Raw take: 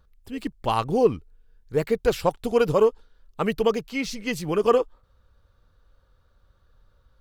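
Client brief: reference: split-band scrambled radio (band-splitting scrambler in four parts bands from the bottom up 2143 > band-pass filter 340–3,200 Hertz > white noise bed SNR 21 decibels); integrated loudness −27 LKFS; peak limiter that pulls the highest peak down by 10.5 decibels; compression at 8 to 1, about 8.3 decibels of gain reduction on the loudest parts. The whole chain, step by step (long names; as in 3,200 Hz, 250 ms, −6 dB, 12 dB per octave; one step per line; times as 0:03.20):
downward compressor 8 to 1, threshold −22 dBFS
brickwall limiter −23 dBFS
band-splitting scrambler in four parts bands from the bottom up 2143
band-pass filter 340–3,200 Hz
white noise bed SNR 21 dB
level +5 dB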